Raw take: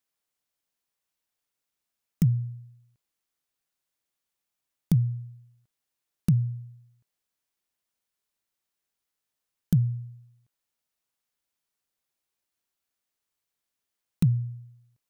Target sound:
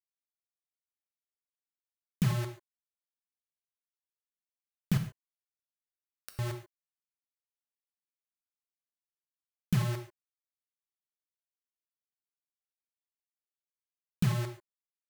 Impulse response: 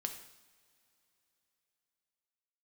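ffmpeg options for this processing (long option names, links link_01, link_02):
-filter_complex "[0:a]asettb=1/sr,asplit=3[link_01][link_02][link_03];[link_01]atrim=end=4.974[link_04];[link_02]atrim=start=4.97:end=6.39,asetpts=PTS-STARTPTS,afade=type=in:duration=0.004:curve=qsin,afade=type=out:start_time=1.416:duration=0.004:curve=qsin,highpass=frequency=1200:width=0.5412,highpass=frequency=1200:width=1.3066[link_05];[link_03]atrim=start=6.386[link_06];[link_04][link_05]acrossfade=duration=0.004:curve1=hsin:curve2=qsin[link_07];[link_07][link_06]acrossfade=duration=0.004:curve1=qsin:curve2=hsin,acrusher=bits=4:mix=0:aa=0.000001[link_08];[1:a]atrim=start_sample=2205,atrim=end_sample=6615[link_09];[link_08][link_09]afir=irnorm=-1:irlink=0,volume=-3.5dB"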